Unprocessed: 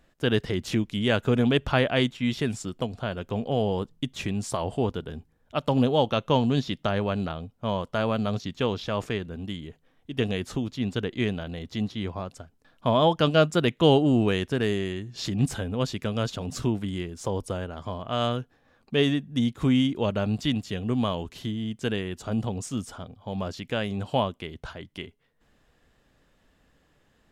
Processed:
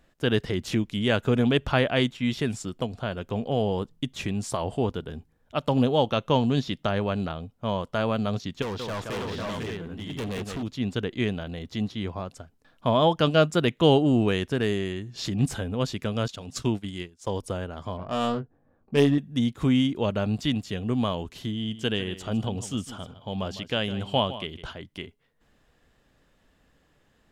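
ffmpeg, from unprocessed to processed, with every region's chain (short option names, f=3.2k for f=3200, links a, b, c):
-filter_complex "[0:a]asettb=1/sr,asplit=3[a][b][c];[a]atrim=end=8.624[d];[b]atrim=start=8.62:end=10.63,asetpts=PTS-STARTPTS,afade=t=in:d=0.004:c=qsin,afade=t=out:st=2.006:d=0.004:c=qsin,equalizer=f=1.1k:t=o:w=1.6:g=4.5,aecho=1:1:174|498|516|587:0.355|0.473|0.473|0.501,atrim=end_sample=88641,volume=29dB,asoftclip=hard,volume=-29dB[e];[c]atrim=start=10.626[f];[d][e]acrossfade=d=0.004:c1=hsin:c2=qsin[g];[g][f]acrossfade=d=0.004:c1=qsin:c2=hsin,asettb=1/sr,asplit=3[h][i][j];[h]atrim=end=16.284[k];[i]atrim=start=16.28:end=17.43,asetpts=PTS-STARTPTS,afade=t=in:d=0.004:c=qsin,afade=t=out:st=1.146:d=0.004:c=qsin,equalizer=f=5.5k:w=0.32:g=7,agate=range=-33dB:threshold=-26dB:ratio=3:release=100:detection=peak[l];[j]atrim=start=17.426[m];[k][l]acrossfade=d=0.004:c1=hsin:c2=qsin[n];[n][m]acrossfade=d=0.004:c1=qsin:c2=hsin,asettb=1/sr,asplit=3[o][p][q];[o]atrim=end=17.974[r];[p]atrim=start=17.97:end=19.18,asetpts=PTS-STARTPTS,afade=t=in:d=0.004:c=qsin,afade=t=out:st=1.206:d=0.004:c=qsin,adynamicsmooth=sensitivity=1.5:basefreq=830,asplit=2[s][t];[t]adelay=21,volume=-4.5dB[u];[s][u]amix=inputs=2:normalize=0,atrim=end_sample=53361[v];[q]atrim=start=19.176[w];[r][v]acrossfade=d=0.004:c1=hsin:c2=qsin[x];[x][w]acrossfade=d=0.004:c1=qsin:c2=hsin,asettb=1/sr,asplit=3[y][z][aa];[y]atrim=end=21.534[ab];[z]atrim=start=21.53:end=24.77,asetpts=PTS-STARTPTS,afade=t=in:d=0.004:c=qsin,afade=t=out:st=3.236:d=0.004:c=qsin,equalizer=f=3.1k:t=o:w=0.29:g=9,aecho=1:1:155:0.2,atrim=end_sample=142884[ac];[aa]atrim=start=24.766[ad];[ab][ac]acrossfade=d=0.004:c1=hsin:c2=qsin[ae];[ae][ad]acrossfade=d=0.004:c1=qsin:c2=hsin"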